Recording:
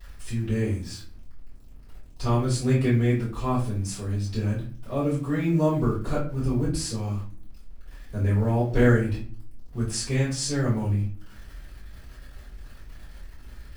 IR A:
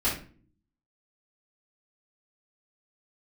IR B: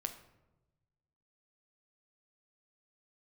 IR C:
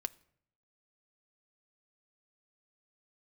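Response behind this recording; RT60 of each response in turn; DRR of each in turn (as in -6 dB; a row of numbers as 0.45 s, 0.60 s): A; 0.45 s, 1.0 s, no single decay rate; -10.0 dB, 5.0 dB, 10.5 dB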